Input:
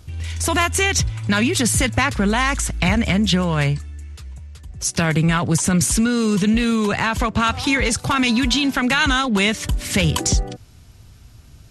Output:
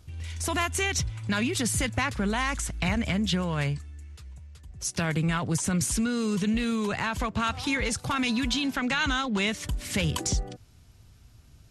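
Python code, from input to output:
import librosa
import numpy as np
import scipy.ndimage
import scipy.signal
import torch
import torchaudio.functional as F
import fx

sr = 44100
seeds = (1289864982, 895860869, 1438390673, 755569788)

y = fx.lowpass(x, sr, hz=8000.0, slope=24, at=(8.76, 9.47))
y = F.gain(torch.from_numpy(y), -9.0).numpy()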